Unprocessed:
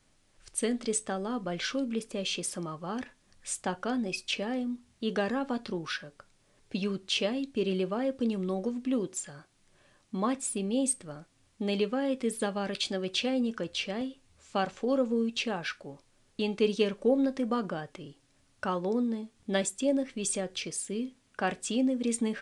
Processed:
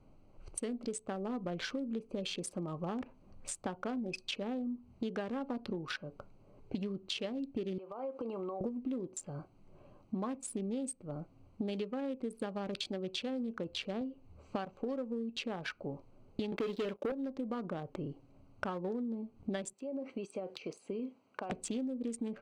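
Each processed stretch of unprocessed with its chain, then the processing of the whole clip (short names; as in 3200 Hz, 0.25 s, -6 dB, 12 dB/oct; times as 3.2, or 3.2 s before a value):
7.78–8.61 HPF 530 Hz + bell 1100 Hz +9 dB 1.2 oct + compressor 8:1, threshold -40 dBFS
16.52–17.12 BPF 250–3800 Hz + sample leveller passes 3
19.73–21.5 weighting filter A + compressor 20:1, threshold -38 dBFS
whole clip: Wiener smoothing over 25 samples; compressor 12:1, threshold -43 dBFS; high shelf 5100 Hz -5 dB; gain +8.5 dB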